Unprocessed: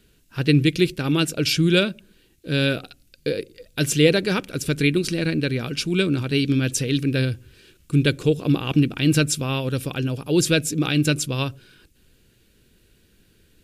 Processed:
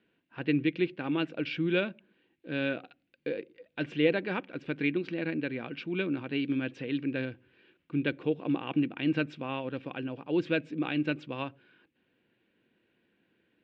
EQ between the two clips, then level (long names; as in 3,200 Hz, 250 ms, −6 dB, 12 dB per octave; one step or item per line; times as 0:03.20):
loudspeaker in its box 350–2,900 Hz, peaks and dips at 420 Hz −9 dB, 600 Hz −4 dB, 1,300 Hz −6 dB
high-shelf EQ 2,000 Hz −10.5 dB
−1.5 dB